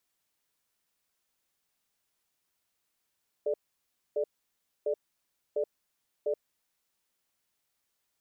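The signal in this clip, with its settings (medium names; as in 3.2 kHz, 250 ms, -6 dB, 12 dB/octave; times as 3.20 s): cadence 430 Hz, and 591 Hz, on 0.08 s, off 0.62 s, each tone -29 dBFS 3.04 s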